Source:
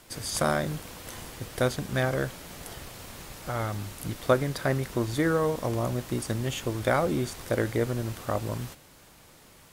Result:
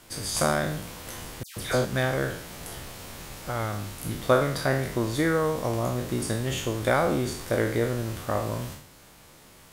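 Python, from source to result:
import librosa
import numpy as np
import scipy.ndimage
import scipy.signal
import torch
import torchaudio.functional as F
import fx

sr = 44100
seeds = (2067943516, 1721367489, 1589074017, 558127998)

y = fx.spec_trails(x, sr, decay_s=0.63)
y = fx.dispersion(y, sr, late='lows', ms=136.0, hz=2100.0, at=(1.43, 1.85))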